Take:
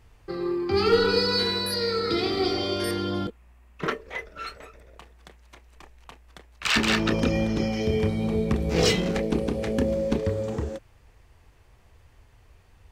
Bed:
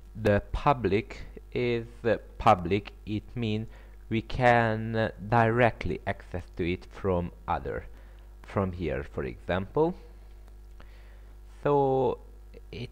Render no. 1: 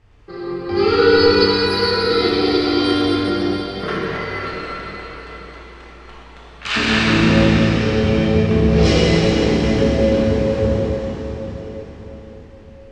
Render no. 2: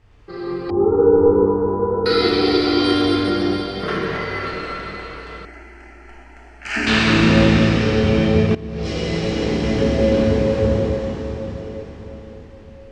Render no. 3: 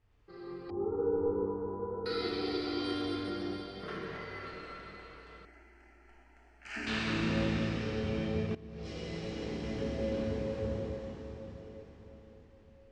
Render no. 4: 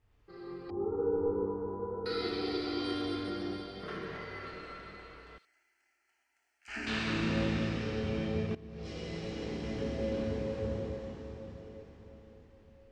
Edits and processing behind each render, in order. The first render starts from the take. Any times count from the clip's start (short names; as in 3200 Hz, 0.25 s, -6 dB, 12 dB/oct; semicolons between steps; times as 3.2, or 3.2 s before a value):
air absorption 95 m; plate-style reverb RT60 5 s, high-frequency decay 0.95×, DRR -9 dB
0.7–2.06 elliptic low-pass 1000 Hz, stop band 70 dB; 5.45–6.87 fixed phaser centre 740 Hz, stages 8; 8.55–10.24 fade in, from -19 dB
gain -18 dB
5.38–6.68 differentiator